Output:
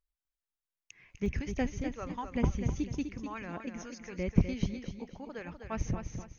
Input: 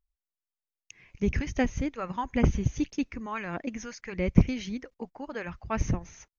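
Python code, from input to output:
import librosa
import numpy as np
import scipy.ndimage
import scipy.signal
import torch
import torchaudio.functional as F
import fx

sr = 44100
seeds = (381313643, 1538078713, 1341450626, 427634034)

y = fx.peak_eq(x, sr, hz=1500.0, db=fx.steps((0.0, 4.5), (1.26, -3.0)), octaves=1.5)
y = fx.echo_feedback(y, sr, ms=251, feedback_pct=33, wet_db=-7.5)
y = F.gain(torch.from_numpy(y), -5.5).numpy()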